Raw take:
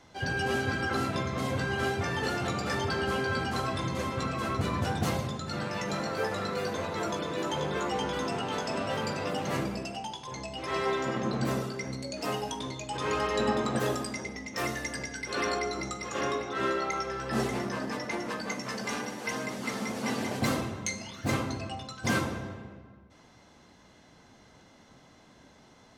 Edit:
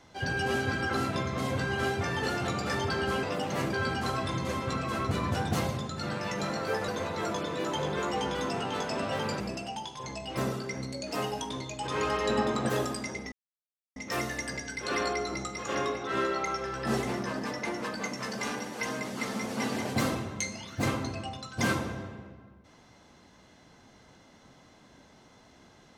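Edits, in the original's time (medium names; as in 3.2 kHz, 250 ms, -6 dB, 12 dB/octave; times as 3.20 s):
6.38–6.66 s: delete
9.18–9.68 s: move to 3.23 s
10.65–11.47 s: delete
14.42 s: insert silence 0.64 s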